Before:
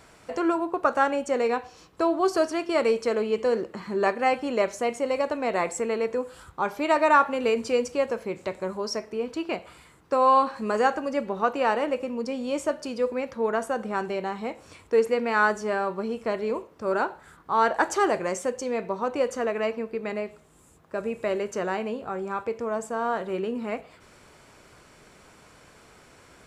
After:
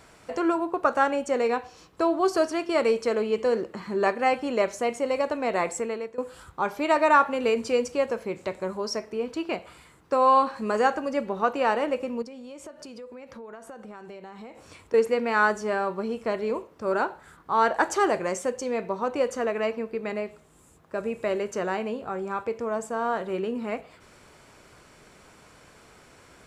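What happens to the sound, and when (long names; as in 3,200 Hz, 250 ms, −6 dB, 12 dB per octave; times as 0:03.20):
0:05.74–0:06.18: fade out, to −17.5 dB
0:12.22–0:14.94: downward compressor 8 to 1, threshold −39 dBFS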